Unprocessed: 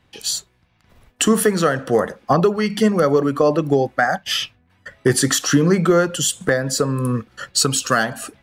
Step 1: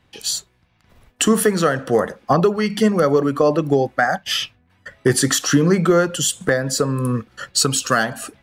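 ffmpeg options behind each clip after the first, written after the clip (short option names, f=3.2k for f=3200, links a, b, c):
-af anull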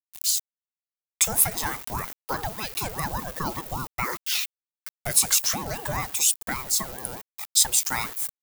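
-af "aeval=exprs='val(0)*gte(abs(val(0)),0.0316)':c=same,aemphasis=mode=production:type=riaa,aeval=exprs='val(0)*sin(2*PI*440*n/s+440*0.5/5*sin(2*PI*5*n/s))':c=same,volume=-9dB"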